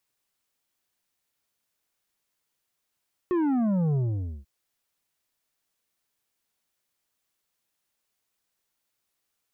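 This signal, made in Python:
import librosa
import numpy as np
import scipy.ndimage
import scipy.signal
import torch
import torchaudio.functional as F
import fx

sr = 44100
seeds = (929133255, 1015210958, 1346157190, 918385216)

y = fx.sub_drop(sr, level_db=-22.5, start_hz=370.0, length_s=1.14, drive_db=8, fade_s=0.5, end_hz=65.0)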